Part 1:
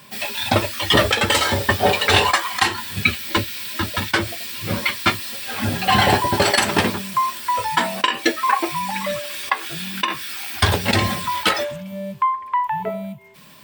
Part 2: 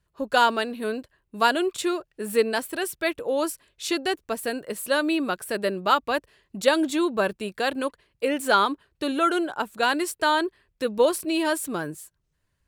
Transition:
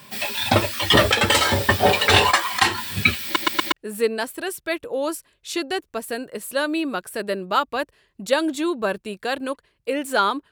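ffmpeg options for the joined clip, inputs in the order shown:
ffmpeg -i cue0.wav -i cue1.wav -filter_complex "[0:a]apad=whole_dur=10.51,atrim=end=10.51,asplit=4[link_01][link_02][link_03][link_04];[link_01]atrim=end=3.362[link_05];[link_02]atrim=start=3.238:end=3.362[link_06];[link_03]atrim=start=3.238:end=3.362[link_07];[link_04]atrim=start=3.238:end=3.362[link_08];[1:a]atrim=start=2.068:end=8.86[link_09];[link_05][link_06]acrossfade=duration=0.004:curve1=hsin:curve2=hsin[link_10];[link_10][link_07]acrossfade=duration=0.004:curve1=hsin:curve2=hsin[link_11];[link_11][link_08]acrossfade=duration=0.004:curve1=hsin:curve2=hsin[link_12];[link_12][link_09]acrossfade=duration=0.004:curve1=hsin:curve2=hsin" out.wav

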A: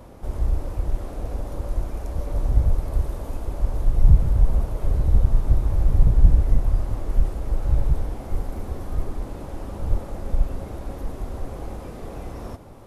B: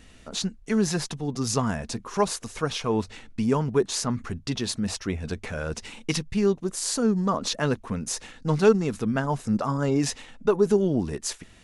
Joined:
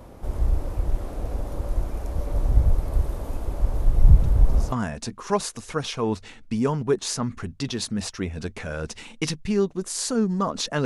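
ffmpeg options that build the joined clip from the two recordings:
ffmpeg -i cue0.wav -i cue1.wav -filter_complex "[1:a]asplit=2[link_01][link_02];[0:a]apad=whole_dur=10.85,atrim=end=10.85,atrim=end=4.722[link_03];[link_02]atrim=start=1.588:end=7.72[link_04];[link_01]atrim=start=1.1:end=1.59,asetpts=PTS-STARTPTS,volume=-17dB,afade=type=in:duration=0.004:curve=hsin,afade=type=out:start_time=0.486:duration=0.004:curve=hsin,adelay=4230[link_05];[link_03][link_04]acrossfade=duration=0.004:curve1=hsin:curve2=hsin[link_06];[link_06][link_05]amix=inputs=2:normalize=0" out.wav

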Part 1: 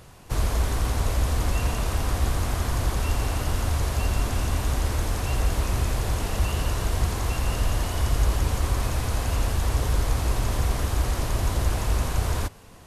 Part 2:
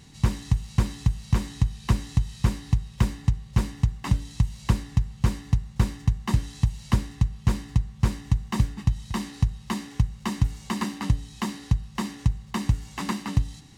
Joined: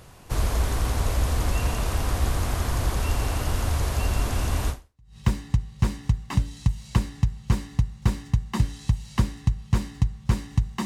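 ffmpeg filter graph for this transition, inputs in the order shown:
ffmpeg -i cue0.wav -i cue1.wav -filter_complex "[0:a]apad=whole_dur=10.85,atrim=end=10.85,atrim=end=5.17,asetpts=PTS-STARTPTS[link_01];[1:a]atrim=start=2.43:end=8.59,asetpts=PTS-STARTPTS[link_02];[link_01][link_02]acrossfade=duration=0.48:curve1=exp:curve2=exp" out.wav

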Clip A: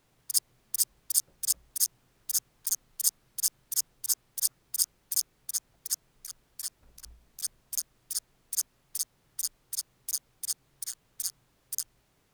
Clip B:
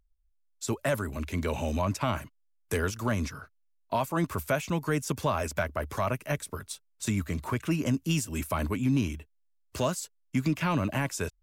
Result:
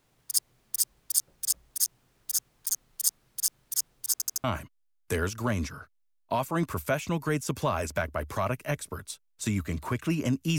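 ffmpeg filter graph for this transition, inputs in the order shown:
ffmpeg -i cue0.wav -i cue1.wav -filter_complex "[0:a]apad=whole_dur=10.58,atrim=end=10.58,asplit=4[link_01][link_02][link_03][link_04];[link_01]atrim=end=4.202[link_05];[link_02]atrim=start=4.118:end=4.202[link_06];[link_03]atrim=start=4.118:end=4.202[link_07];[link_04]atrim=start=4.118:end=4.202[link_08];[1:a]atrim=start=2.048:end=8.19[link_09];[link_05][link_06]acrossfade=duration=0.004:curve1=hsin:curve2=hsin[link_10];[link_10][link_07]acrossfade=duration=0.004:curve1=hsin:curve2=hsin[link_11];[link_11][link_08]acrossfade=duration=0.004:curve1=hsin:curve2=hsin[link_12];[link_12][link_09]acrossfade=duration=0.004:curve1=hsin:curve2=hsin" out.wav

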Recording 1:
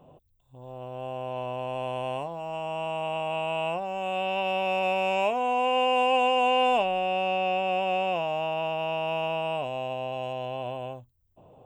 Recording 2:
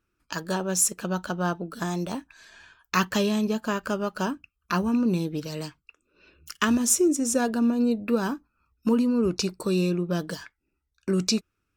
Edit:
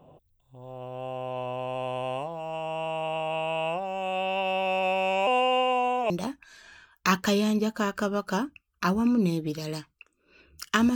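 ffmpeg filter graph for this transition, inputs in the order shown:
ffmpeg -i cue0.wav -i cue1.wav -filter_complex "[0:a]apad=whole_dur=10.95,atrim=end=10.95,asplit=2[link_01][link_02];[link_01]atrim=end=5.272[link_03];[link_02]atrim=start=5.268:end=6.102,asetpts=PTS-STARTPTS,areverse[link_04];[1:a]atrim=start=1.978:end=6.83[link_05];[link_03][link_04]acrossfade=duration=0.004:curve1=hsin:curve2=hsin[link_06];[link_06][link_05]acrossfade=duration=0.004:curve1=hsin:curve2=hsin" out.wav

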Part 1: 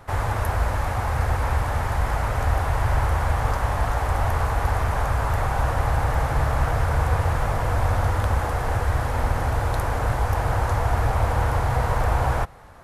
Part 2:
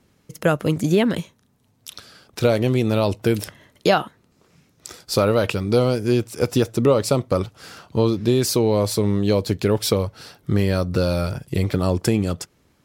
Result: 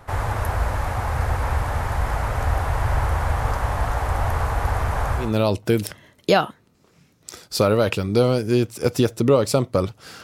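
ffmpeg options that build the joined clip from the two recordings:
ffmpeg -i cue0.wav -i cue1.wav -filter_complex "[0:a]apad=whole_dur=10.23,atrim=end=10.23,atrim=end=5.36,asetpts=PTS-STARTPTS[link_01];[1:a]atrim=start=2.71:end=7.8,asetpts=PTS-STARTPTS[link_02];[link_01][link_02]acrossfade=duration=0.22:curve1=tri:curve2=tri" out.wav

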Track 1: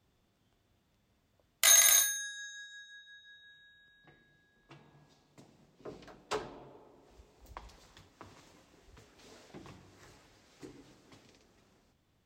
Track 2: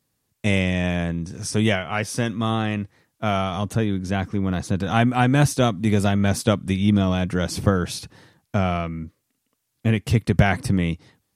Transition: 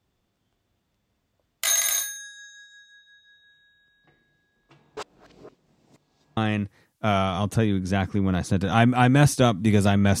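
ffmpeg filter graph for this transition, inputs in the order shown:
ffmpeg -i cue0.wav -i cue1.wav -filter_complex "[0:a]apad=whole_dur=10.2,atrim=end=10.2,asplit=2[link_01][link_02];[link_01]atrim=end=4.972[link_03];[link_02]atrim=start=4.968:end=6.372,asetpts=PTS-STARTPTS,areverse[link_04];[1:a]atrim=start=2.558:end=6.39[link_05];[link_03][link_04]acrossfade=duration=0.004:curve1=hsin:curve2=hsin[link_06];[link_06][link_05]acrossfade=duration=0.004:curve1=hsin:curve2=hsin" out.wav

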